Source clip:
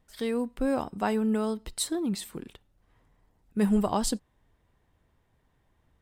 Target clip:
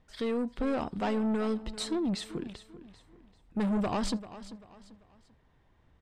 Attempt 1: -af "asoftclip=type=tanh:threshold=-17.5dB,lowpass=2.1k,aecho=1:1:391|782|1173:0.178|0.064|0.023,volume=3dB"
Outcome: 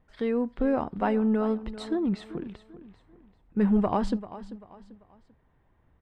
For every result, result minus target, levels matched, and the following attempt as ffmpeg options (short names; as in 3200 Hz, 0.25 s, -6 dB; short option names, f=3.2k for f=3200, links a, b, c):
4000 Hz band -11.5 dB; soft clip: distortion -12 dB
-af "asoftclip=type=tanh:threshold=-17.5dB,lowpass=5.2k,aecho=1:1:391|782|1173:0.178|0.064|0.023,volume=3dB"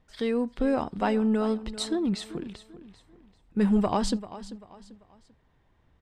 soft clip: distortion -12 dB
-af "asoftclip=type=tanh:threshold=-29dB,lowpass=5.2k,aecho=1:1:391|782|1173:0.178|0.064|0.023,volume=3dB"